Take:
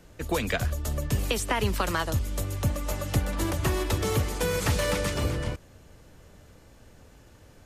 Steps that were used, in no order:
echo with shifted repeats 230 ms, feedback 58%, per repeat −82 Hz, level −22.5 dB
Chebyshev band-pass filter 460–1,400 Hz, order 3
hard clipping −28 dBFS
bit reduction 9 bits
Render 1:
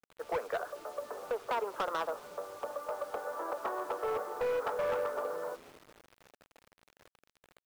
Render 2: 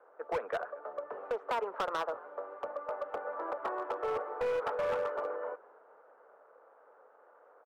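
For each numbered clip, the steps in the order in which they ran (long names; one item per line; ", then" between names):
Chebyshev band-pass filter, then hard clipping, then echo with shifted repeats, then bit reduction
echo with shifted repeats, then bit reduction, then Chebyshev band-pass filter, then hard clipping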